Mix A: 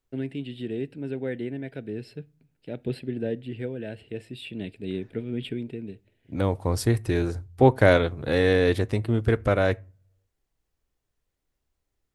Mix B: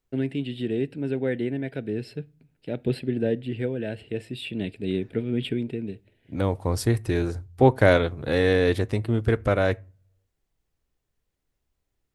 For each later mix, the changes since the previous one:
first voice +4.5 dB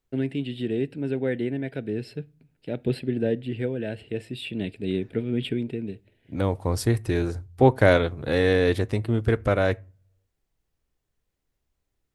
nothing changed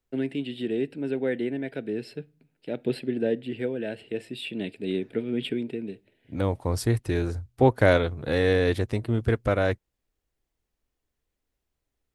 first voice: add high-pass filter 200 Hz 12 dB per octave
second voice: send off

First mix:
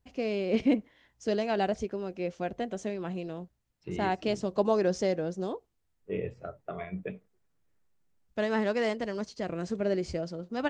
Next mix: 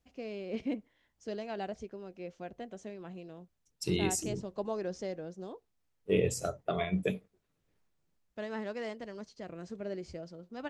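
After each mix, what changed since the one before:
first voice −10.0 dB
second voice: remove transistor ladder low-pass 2,600 Hz, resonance 25%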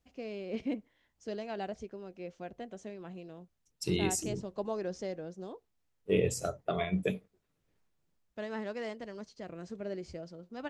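nothing changed

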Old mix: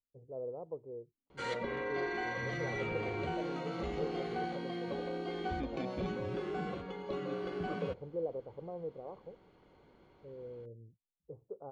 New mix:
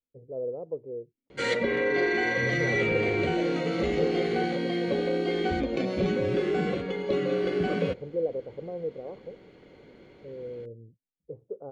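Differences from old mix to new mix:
background +4.5 dB
master: add octave-band graphic EQ 125/250/500/1,000/2,000/4,000/8,000 Hz +4/+6/+8/−6/+9/+4/+7 dB

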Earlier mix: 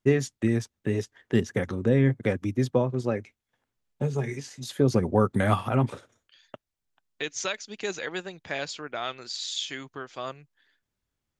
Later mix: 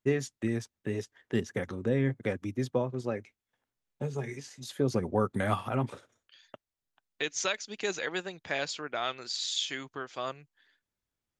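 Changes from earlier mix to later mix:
first voice −4.5 dB
master: add low-shelf EQ 240 Hz −4 dB

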